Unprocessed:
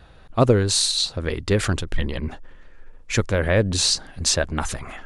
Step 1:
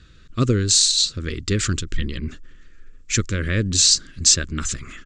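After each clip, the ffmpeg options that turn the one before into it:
-af "firequalizer=gain_entry='entry(330,0);entry(800,-28);entry(1200,-3);entry(7500,10);entry(11000,-24)':delay=0.05:min_phase=1"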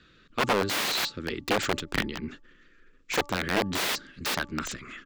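-filter_complex "[0:a]aeval=exprs='(mod(5.62*val(0)+1,2)-1)/5.62':c=same,acrossover=split=180 4500:gain=0.158 1 0.2[a][b][c];[a][b][c]amix=inputs=3:normalize=0,bandreject=f=289.3:t=h:w=4,bandreject=f=578.6:t=h:w=4,bandreject=f=867.9:t=h:w=4,bandreject=f=1.1572k:t=h:w=4,volume=-1.5dB"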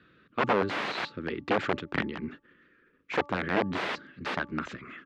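-af "highpass=100,lowpass=2.2k"

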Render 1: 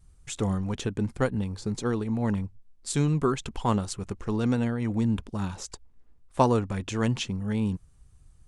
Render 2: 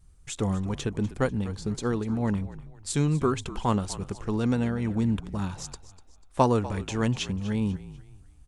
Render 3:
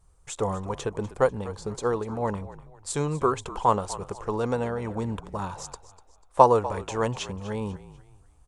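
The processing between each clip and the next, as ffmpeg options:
-filter_complex "[0:a]asplit=4[a][b][c][d];[b]adelay=246,afreqshift=-48,volume=-16dB[e];[c]adelay=492,afreqshift=-96,volume=-24.4dB[f];[d]adelay=738,afreqshift=-144,volume=-32.8dB[g];[a][e][f][g]amix=inputs=4:normalize=0"
-af "equalizer=f=250:t=o:w=1:g=-5,equalizer=f=500:t=o:w=1:g=10,equalizer=f=1k:t=o:w=1:g=11,equalizer=f=8k:t=o:w=1:g=5,volume=-4.5dB"

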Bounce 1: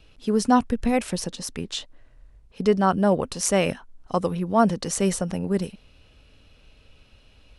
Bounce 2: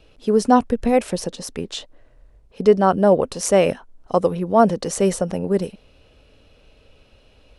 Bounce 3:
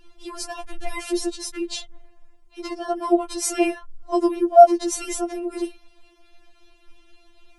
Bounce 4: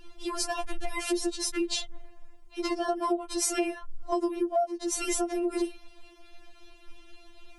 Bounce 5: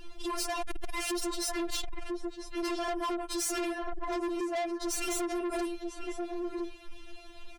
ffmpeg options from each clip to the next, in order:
-af "equalizer=f=510:t=o:w=1.5:g=8"
-filter_complex "[0:a]acrossover=split=730|4800[a][b][c];[b]alimiter=limit=-19.5dB:level=0:latency=1:release=10[d];[a][d][c]amix=inputs=3:normalize=0,afftfilt=real='re*4*eq(mod(b,16),0)':imag='im*4*eq(mod(b,16),0)':win_size=2048:overlap=0.75,volume=3dB"
-af "acompressor=threshold=-27dB:ratio=12,volume=2.5dB"
-filter_complex "[0:a]asplit=2[a][b];[b]adelay=991.3,volume=-7dB,highshelf=f=4k:g=-22.3[c];[a][c]amix=inputs=2:normalize=0,asoftclip=type=tanh:threshold=-34dB,volume=4dB"

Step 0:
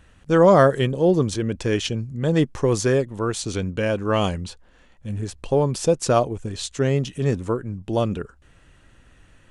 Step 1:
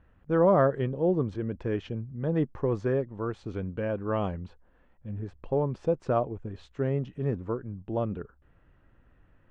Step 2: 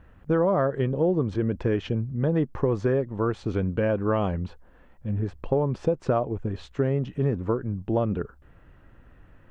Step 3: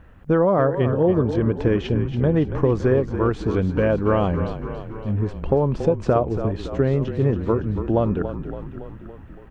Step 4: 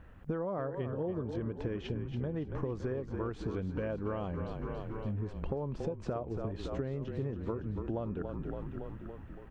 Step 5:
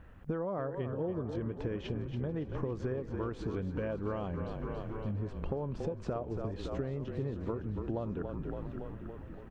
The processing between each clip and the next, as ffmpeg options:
-af "lowpass=1.5k,volume=-7.5dB"
-af "acompressor=threshold=-28dB:ratio=6,volume=8.5dB"
-filter_complex "[0:a]asplit=9[a][b][c][d][e][f][g][h][i];[b]adelay=281,afreqshift=-31,volume=-10dB[j];[c]adelay=562,afreqshift=-62,volume=-13.9dB[k];[d]adelay=843,afreqshift=-93,volume=-17.8dB[l];[e]adelay=1124,afreqshift=-124,volume=-21.6dB[m];[f]adelay=1405,afreqshift=-155,volume=-25.5dB[n];[g]adelay=1686,afreqshift=-186,volume=-29.4dB[o];[h]adelay=1967,afreqshift=-217,volume=-33.3dB[p];[i]adelay=2248,afreqshift=-248,volume=-37.1dB[q];[a][j][k][l][m][n][o][p][q]amix=inputs=9:normalize=0,volume=4.5dB"
-af "acompressor=threshold=-27dB:ratio=6,volume=-6dB"
-af "aecho=1:1:687|1374|2061|2748|3435:0.133|0.0773|0.0449|0.026|0.0151"

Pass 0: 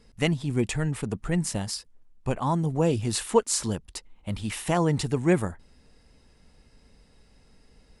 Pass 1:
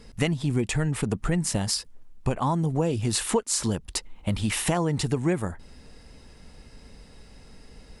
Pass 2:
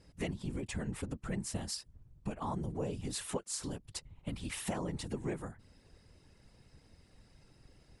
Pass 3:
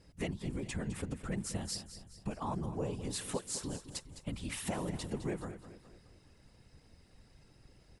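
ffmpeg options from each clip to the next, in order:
-af "acompressor=threshold=-31dB:ratio=5,volume=9dB"
-af "afftfilt=real='hypot(re,im)*cos(2*PI*random(0))':imag='hypot(re,im)*sin(2*PI*random(1))':win_size=512:overlap=0.75,volume=-7dB"
-af "aecho=1:1:209|418|627|836|1045:0.237|0.109|0.0502|0.0231|0.0106"

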